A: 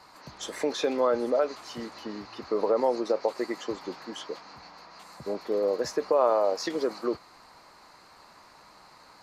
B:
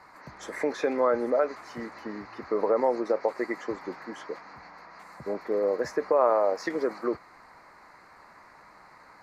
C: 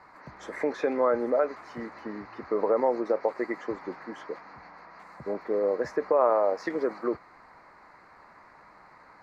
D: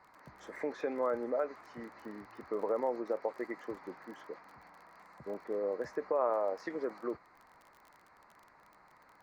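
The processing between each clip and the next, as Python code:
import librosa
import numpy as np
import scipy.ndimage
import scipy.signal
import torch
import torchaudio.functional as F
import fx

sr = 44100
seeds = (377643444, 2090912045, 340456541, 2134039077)

y1 = fx.high_shelf_res(x, sr, hz=2500.0, db=-6.5, q=3.0)
y2 = fx.lowpass(y1, sr, hz=2900.0, slope=6)
y3 = fx.dmg_crackle(y2, sr, seeds[0], per_s=29.0, level_db=-38.0)
y3 = y3 * 10.0 ** (-8.5 / 20.0)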